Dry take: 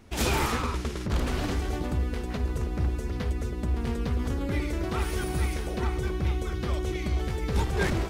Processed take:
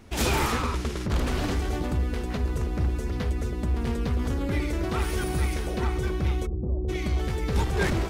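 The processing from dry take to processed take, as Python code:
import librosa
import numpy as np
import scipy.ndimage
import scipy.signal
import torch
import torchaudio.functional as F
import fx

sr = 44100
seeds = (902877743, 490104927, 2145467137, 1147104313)

p1 = fx.gaussian_blur(x, sr, sigma=15.0, at=(6.45, 6.88), fade=0.02)
p2 = 10.0 ** (-29.5 / 20.0) * np.tanh(p1 / 10.0 ** (-29.5 / 20.0))
y = p1 + (p2 * librosa.db_to_amplitude(-7.5))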